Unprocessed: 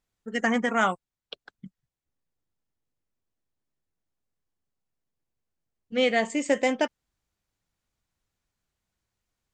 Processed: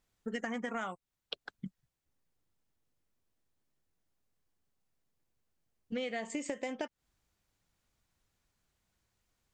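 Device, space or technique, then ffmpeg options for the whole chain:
serial compression, peaks first: -af "acompressor=threshold=-32dB:ratio=6,acompressor=threshold=-39dB:ratio=2.5,volume=3dB"

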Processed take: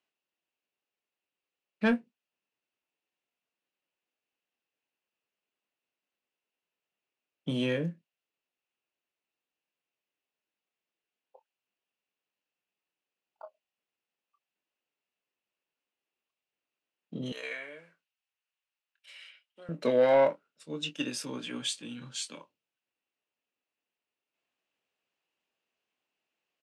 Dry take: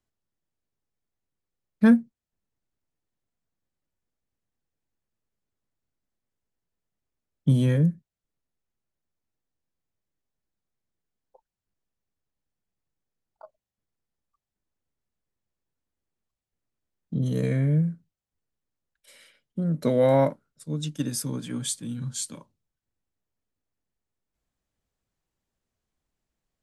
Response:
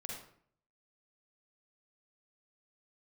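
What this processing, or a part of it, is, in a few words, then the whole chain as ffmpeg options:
intercom: -filter_complex "[0:a]highpass=370,lowpass=4.4k,equalizer=f=2.7k:t=o:w=0.39:g=12,asoftclip=type=tanh:threshold=-16dB,asplit=2[a][b];[b]adelay=24,volume=-10dB[c];[a][c]amix=inputs=2:normalize=0,asettb=1/sr,asplit=3[d][e][f];[d]atrim=end=17.324[g];[e]atrim=start=17.32:end=19.69,asetpts=PTS-STARTPTS,afade=t=in:d=0.004:c=qsin,afade=t=out:st=2.366:d=0.004:c=qsin,highpass=920[h];[f]atrim=start=19.686[i];[g][h]acrossfade=d=0.004:c1=hsin:c2=qsin[j];[j][i]acrossfade=d=0.004:c1=qsin:c2=hsin,highshelf=f=8.2k:g=6"

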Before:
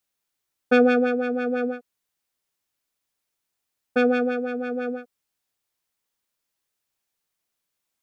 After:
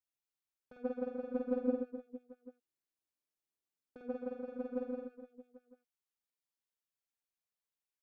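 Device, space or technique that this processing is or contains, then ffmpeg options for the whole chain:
de-esser from a sidechain: -filter_complex "[0:a]asplit=2[a][b];[b]highpass=f=4.8k:p=1,apad=whole_len=354092[c];[a][c]sidechaincompress=threshold=-48dB:ratio=10:attack=0.51:release=80,agate=range=-30dB:threshold=-29dB:ratio=16:detection=peak,asettb=1/sr,asplit=3[d][e][f];[d]atrim=end=1.664[g];[e]atrim=start=1.66:end=4.09,asetpts=PTS-STARTPTS,afade=t=in:d=0.004:c=qsin,afade=t=out:st=2.426:d=0.004:c=qsin,equalizer=f=330:t=o:w=1.1:g=8.5[h];[f]atrim=start=4.086[i];[g][h]acrossfade=d=0.004:c1=hsin:c2=qsin[j];[j][i]acrossfade=d=0.004:c1=qsin:c2=hsin,aecho=1:1:50|130|258|462.8|790.5:0.631|0.398|0.251|0.158|0.1,volume=12dB"

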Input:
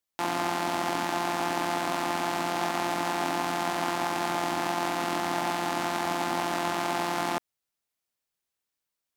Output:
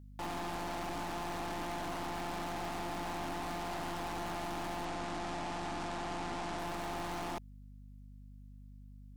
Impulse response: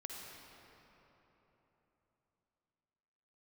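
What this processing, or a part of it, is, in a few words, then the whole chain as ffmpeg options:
valve amplifier with mains hum: -filter_complex "[0:a]aeval=exprs='(tanh(70.8*val(0)+0.35)-tanh(0.35))/70.8':c=same,aeval=exprs='val(0)+0.00282*(sin(2*PI*50*n/s)+sin(2*PI*2*50*n/s)/2+sin(2*PI*3*50*n/s)/3+sin(2*PI*4*50*n/s)/4+sin(2*PI*5*50*n/s)/5)':c=same,asettb=1/sr,asplit=3[a][b][c];[a]atrim=end=4.854[d];[b]atrim=start=4.85:end=6.59,asetpts=PTS-STARTPTS,afade=t=in:d=0.004:c=qsin,afade=t=out:st=1.736:d=0.004:c=qsin,lowpass=f=9.1k:w=0.5412,lowpass=f=9.1k:w=1.3066[e];[c]atrim=start=6.586[f];[d][e]acrossfade=d=0.004:c1=hsin:c2=qsin[g];[g][f]acrossfade=d=0.004:c1=qsin:c2=hsin"

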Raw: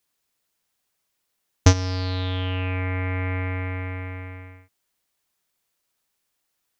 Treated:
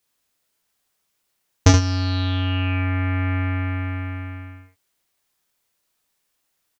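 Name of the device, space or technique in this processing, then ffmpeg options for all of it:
slapback doubling: -filter_complex "[0:a]asplit=3[a][b][c];[b]adelay=29,volume=-4.5dB[d];[c]adelay=75,volume=-5.5dB[e];[a][d][e]amix=inputs=3:normalize=0,volume=1dB"

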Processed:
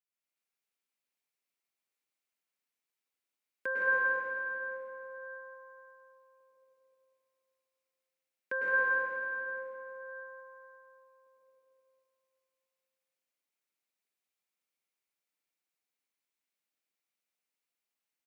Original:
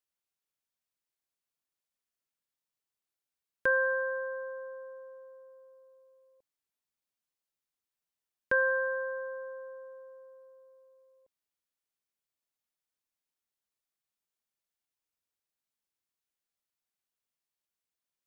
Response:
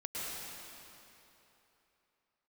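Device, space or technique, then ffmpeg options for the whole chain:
stadium PA: -filter_complex "[0:a]highpass=f=180:w=0.5412,highpass=f=180:w=1.3066,equalizer=f=2.3k:t=o:w=0.42:g=6,aecho=1:1:166.2|224.5:0.562|0.355[a];[1:a]atrim=start_sample=2205[b];[a][b]afir=irnorm=-1:irlink=0,volume=-4dB"

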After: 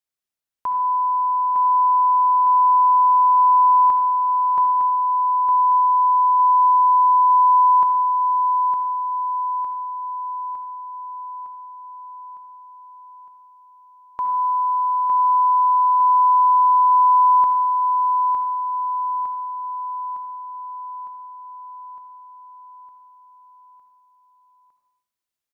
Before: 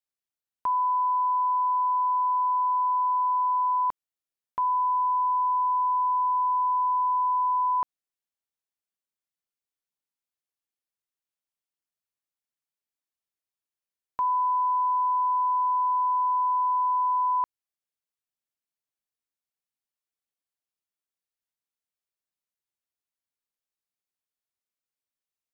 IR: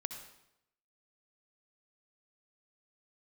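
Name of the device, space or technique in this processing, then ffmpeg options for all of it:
bathroom: -filter_complex "[1:a]atrim=start_sample=2205[a];[0:a][a]afir=irnorm=-1:irlink=0,aecho=1:1:908|1816|2724|3632|4540|5448|6356|7264:0.562|0.326|0.189|0.11|0.0636|0.0369|0.0214|0.0124,volume=4dB"

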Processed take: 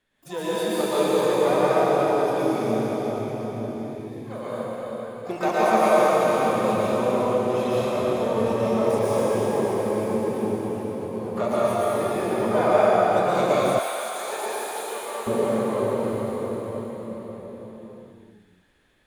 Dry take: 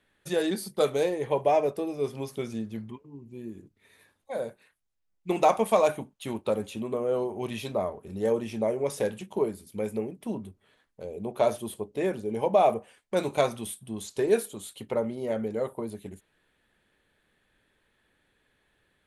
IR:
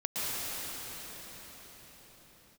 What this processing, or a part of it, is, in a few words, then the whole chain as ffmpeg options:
shimmer-style reverb: -filter_complex "[0:a]asplit=2[a][b];[b]asetrate=88200,aresample=44100,atempo=0.5,volume=-10dB[c];[a][c]amix=inputs=2:normalize=0[d];[1:a]atrim=start_sample=2205[e];[d][e]afir=irnorm=-1:irlink=0,asettb=1/sr,asplit=3[f][g][h];[f]atrim=end=13.794[i];[g]atrim=start=13.79:end=15.27,asetpts=PTS-STARTPTS,afade=t=in:d=0.004:c=qsin,afade=t=out:st=1.476:d=0.004:c=qsin,highpass=820[j];[h]atrim=start=15.266[k];[i][j]acrossfade=d=0.004:c1=hsin:c2=qsin[l];[l][k]acrossfade=d=0.004:c1=qsin:c2=hsin,volume=-3.5dB"

